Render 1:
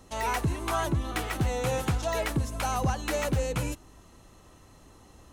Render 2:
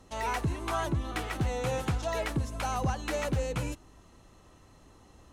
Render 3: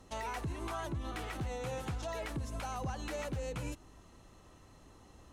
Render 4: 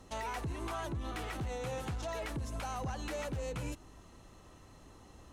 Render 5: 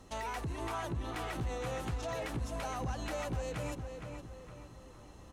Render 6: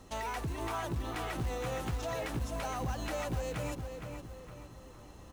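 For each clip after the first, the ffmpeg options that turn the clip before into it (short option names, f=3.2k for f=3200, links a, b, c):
-af "highshelf=f=11k:g=-10.5,volume=-2.5dB"
-af "alimiter=level_in=5.5dB:limit=-24dB:level=0:latency=1:release=109,volume=-5.5dB,volume=-1.5dB"
-af "asoftclip=type=tanh:threshold=-33dB,volume=2dB"
-filter_complex "[0:a]asplit=2[a][b];[b]adelay=463,lowpass=f=3.3k:p=1,volume=-6dB,asplit=2[c][d];[d]adelay=463,lowpass=f=3.3k:p=1,volume=0.45,asplit=2[e][f];[f]adelay=463,lowpass=f=3.3k:p=1,volume=0.45,asplit=2[g][h];[h]adelay=463,lowpass=f=3.3k:p=1,volume=0.45,asplit=2[i][j];[j]adelay=463,lowpass=f=3.3k:p=1,volume=0.45[k];[a][c][e][g][i][k]amix=inputs=6:normalize=0"
-af "acrusher=bits=5:mode=log:mix=0:aa=0.000001,volume=1.5dB"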